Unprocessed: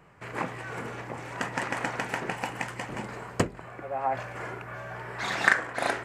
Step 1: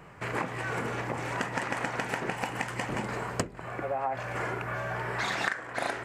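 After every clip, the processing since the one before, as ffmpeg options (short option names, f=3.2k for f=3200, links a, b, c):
-af "acompressor=threshold=-35dB:ratio=5,volume=6.5dB"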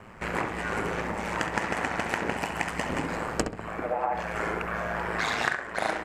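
-filter_complex "[0:a]aeval=exprs='val(0)*sin(2*PI*55*n/s)':c=same,asplit=2[a][b];[b]adelay=67,lowpass=f=2.7k:p=1,volume=-6.5dB,asplit=2[c][d];[d]adelay=67,lowpass=f=2.7k:p=1,volume=0.37,asplit=2[e][f];[f]adelay=67,lowpass=f=2.7k:p=1,volume=0.37,asplit=2[g][h];[h]adelay=67,lowpass=f=2.7k:p=1,volume=0.37[i];[a][c][e][g][i]amix=inputs=5:normalize=0,volume=5dB"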